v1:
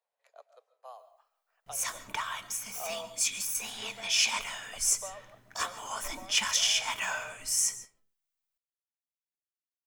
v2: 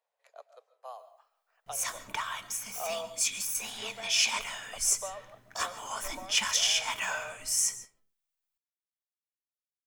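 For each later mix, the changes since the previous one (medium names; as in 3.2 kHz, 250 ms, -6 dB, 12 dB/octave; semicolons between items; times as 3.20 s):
speech +3.5 dB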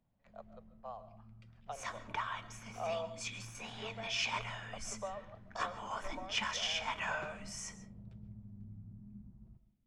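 first sound: unmuted; master: add tape spacing loss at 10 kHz 26 dB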